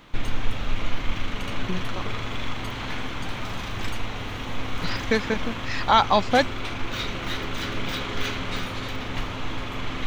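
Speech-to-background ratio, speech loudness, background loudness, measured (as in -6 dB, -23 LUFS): 8.0 dB, -23.5 LUFS, -31.5 LUFS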